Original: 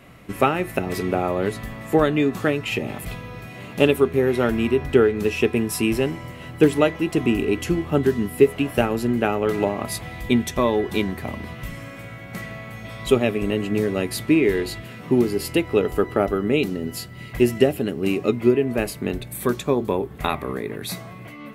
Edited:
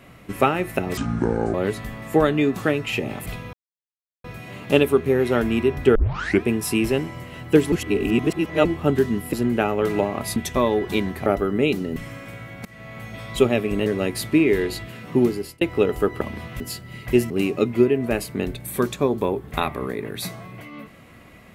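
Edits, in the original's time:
0:00.97–0:01.33: play speed 63%
0:03.32: splice in silence 0.71 s
0:05.03: tape start 0.48 s
0:06.80–0:07.73: reverse
0:08.41–0:08.97: remove
0:10.00–0:10.38: remove
0:11.28–0:11.67: swap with 0:16.17–0:16.87
0:12.36–0:12.70: fade in, from −23 dB
0:13.57–0:13.82: remove
0:15.20–0:15.57: fade out
0:17.57–0:17.97: remove

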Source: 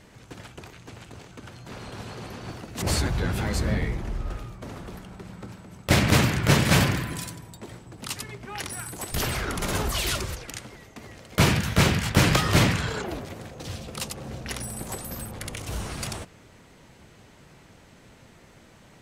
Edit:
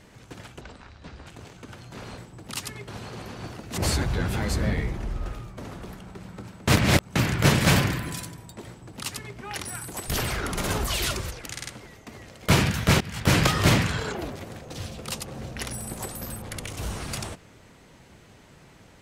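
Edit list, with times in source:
0:00.61–0:01.01: play speed 61%
0:05.72–0:06.20: reverse
0:07.71–0:08.41: duplicate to 0:01.92
0:10.56: stutter 0.05 s, 4 plays
0:11.90–0:12.24: fade in, from −22 dB

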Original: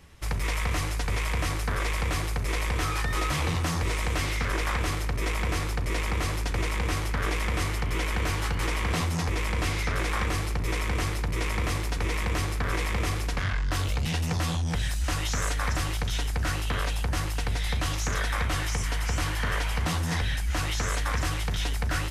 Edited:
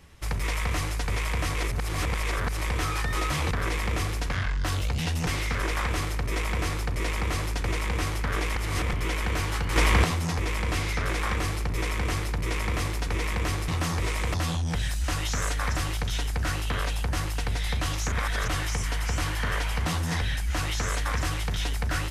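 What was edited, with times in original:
0:01.55–0:02.61: reverse
0:03.51–0:04.17: swap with 0:12.58–0:14.34
0:07.46–0:07.83: reverse
0:08.66–0:08.94: clip gain +7.5 dB
0:18.12–0:18.48: reverse

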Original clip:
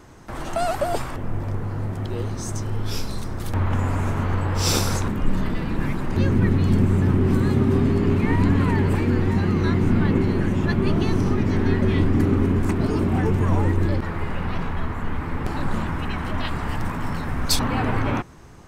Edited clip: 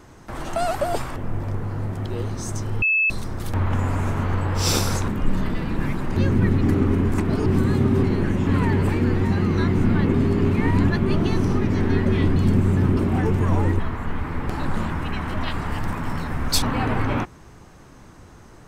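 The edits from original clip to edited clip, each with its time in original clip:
0:02.82–0:03.10: beep over 2,610 Hz −16 dBFS
0:06.61–0:07.22: swap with 0:12.12–0:12.97
0:07.79–0:08.53: swap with 0:10.20–0:10.64
0:13.80–0:14.77: remove

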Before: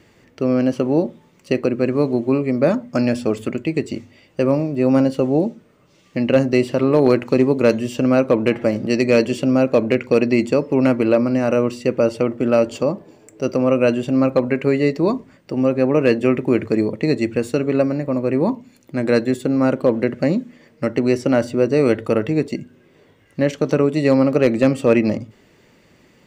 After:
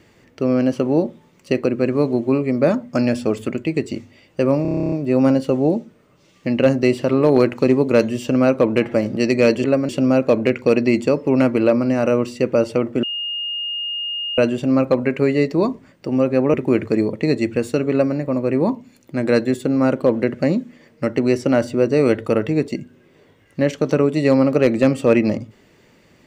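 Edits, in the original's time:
0:04.62: stutter 0.03 s, 11 plays
0:12.48–0:13.83: beep over 2,840 Hz −22.5 dBFS
0:15.99–0:16.34: remove
0:17.71–0:17.96: duplicate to 0:09.34

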